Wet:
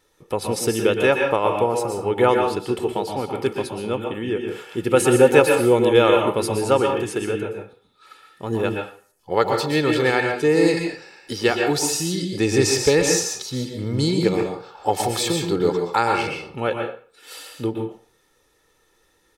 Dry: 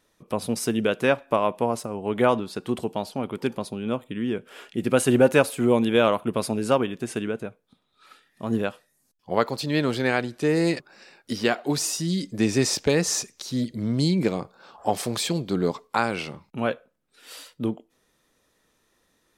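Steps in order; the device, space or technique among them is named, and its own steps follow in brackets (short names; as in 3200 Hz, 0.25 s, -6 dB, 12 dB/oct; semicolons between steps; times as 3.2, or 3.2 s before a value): microphone above a desk (comb 2.3 ms, depth 57%; reverb RT60 0.45 s, pre-delay 0.114 s, DRR 2 dB); gain +2 dB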